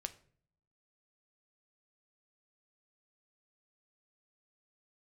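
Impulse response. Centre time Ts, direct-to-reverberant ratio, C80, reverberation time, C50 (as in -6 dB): 5 ms, 8.5 dB, 20.5 dB, 0.50 s, 16.5 dB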